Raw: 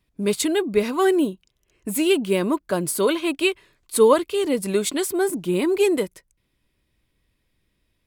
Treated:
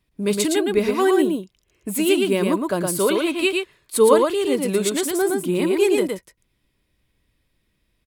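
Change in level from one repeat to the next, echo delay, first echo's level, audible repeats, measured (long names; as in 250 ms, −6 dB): repeats not evenly spaced, 114 ms, −3.5 dB, 1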